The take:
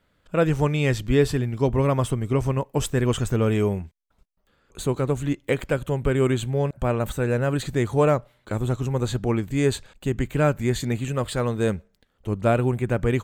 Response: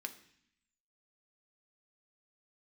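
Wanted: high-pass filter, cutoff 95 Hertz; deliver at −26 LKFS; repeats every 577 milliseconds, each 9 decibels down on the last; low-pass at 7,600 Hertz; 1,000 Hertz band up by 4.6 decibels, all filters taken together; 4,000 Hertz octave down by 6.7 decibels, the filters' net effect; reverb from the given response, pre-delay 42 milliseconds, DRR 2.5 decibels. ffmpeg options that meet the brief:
-filter_complex "[0:a]highpass=95,lowpass=7600,equalizer=frequency=1000:width_type=o:gain=6.5,equalizer=frequency=4000:width_type=o:gain=-9,aecho=1:1:577|1154|1731|2308:0.355|0.124|0.0435|0.0152,asplit=2[link_01][link_02];[1:a]atrim=start_sample=2205,adelay=42[link_03];[link_02][link_03]afir=irnorm=-1:irlink=0,volume=-1dB[link_04];[link_01][link_04]amix=inputs=2:normalize=0,volume=-4dB"

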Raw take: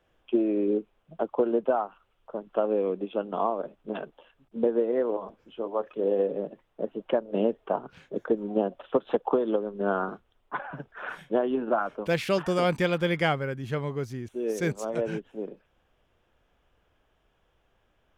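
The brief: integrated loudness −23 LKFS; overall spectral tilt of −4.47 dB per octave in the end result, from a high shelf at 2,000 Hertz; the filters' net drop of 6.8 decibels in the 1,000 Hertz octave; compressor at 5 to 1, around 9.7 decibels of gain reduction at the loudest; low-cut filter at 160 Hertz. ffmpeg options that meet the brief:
ffmpeg -i in.wav -af "highpass=160,equalizer=frequency=1000:width_type=o:gain=-9,highshelf=frequency=2000:gain=-5.5,acompressor=threshold=-32dB:ratio=5,volume=15dB" out.wav

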